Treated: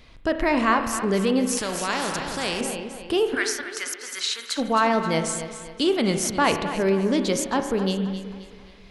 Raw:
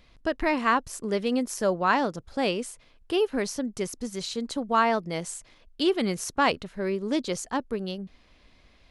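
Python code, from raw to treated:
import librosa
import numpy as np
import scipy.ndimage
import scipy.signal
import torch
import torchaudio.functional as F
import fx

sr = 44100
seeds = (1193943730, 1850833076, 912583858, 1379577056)

p1 = fx.wow_flutter(x, sr, seeds[0], rate_hz=2.1, depth_cents=39.0)
p2 = fx.over_compress(p1, sr, threshold_db=-29.0, ratio=-1.0)
p3 = p1 + (p2 * librosa.db_to_amplitude(-1.0))
p4 = fx.highpass_res(p3, sr, hz=1500.0, q=2.8, at=(3.34, 4.57), fade=0.02)
p5 = p4 + fx.echo_feedback(p4, sr, ms=265, feedback_pct=42, wet_db=-12.0, dry=0)
p6 = fx.rev_spring(p5, sr, rt60_s=1.4, pass_ms=(31,), chirp_ms=50, drr_db=7.5)
y = fx.spectral_comp(p6, sr, ratio=2.0, at=(1.57, 2.61))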